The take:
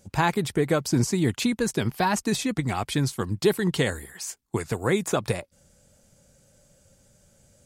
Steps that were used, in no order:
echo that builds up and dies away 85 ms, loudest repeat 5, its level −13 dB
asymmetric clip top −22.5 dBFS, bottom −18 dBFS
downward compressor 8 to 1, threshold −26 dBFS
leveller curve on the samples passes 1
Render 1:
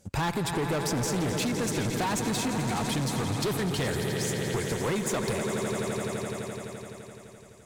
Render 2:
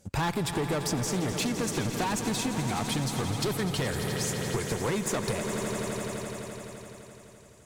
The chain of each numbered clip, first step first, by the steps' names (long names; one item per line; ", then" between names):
leveller curve on the samples, then echo that builds up and dies away, then asymmetric clip, then downward compressor
leveller curve on the samples, then asymmetric clip, then echo that builds up and dies away, then downward compressor